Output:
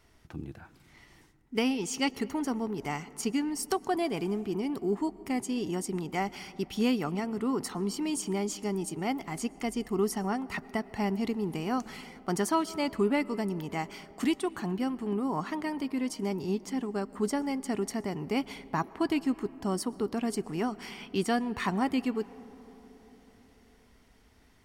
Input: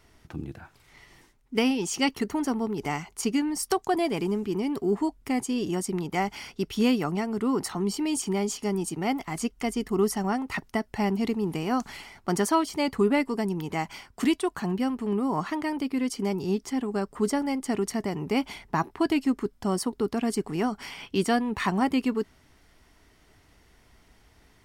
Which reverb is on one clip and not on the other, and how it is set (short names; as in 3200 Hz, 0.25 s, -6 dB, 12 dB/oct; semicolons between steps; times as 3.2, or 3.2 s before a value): digital reverb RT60 4.5 s, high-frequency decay 0.25×, pre-delay 80 ms, DRR 19 dB; gain -4 dB